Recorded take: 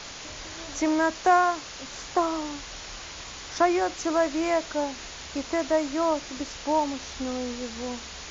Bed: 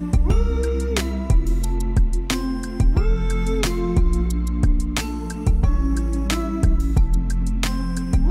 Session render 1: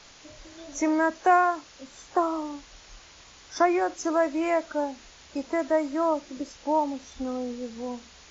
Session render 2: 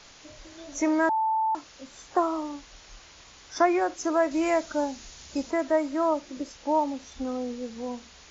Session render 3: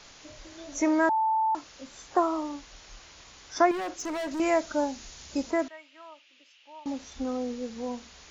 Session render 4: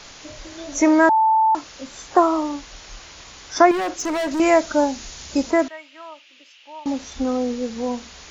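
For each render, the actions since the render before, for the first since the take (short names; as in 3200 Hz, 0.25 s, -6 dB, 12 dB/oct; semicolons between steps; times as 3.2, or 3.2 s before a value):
noise print and reduce 11 dB
1.09–1.55 bleep 882 Hz -22 dBFS; 4.31–5.51 tone controls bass +6 dB, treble +8 dB
3.71–4.4 overloaded stage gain 30.5 dB; 5.68–6.86 band-pass 2800 Hz, Q 4.3
gain +9 dB; limiter -2 dBFS, peak gain reduction 1.5 dB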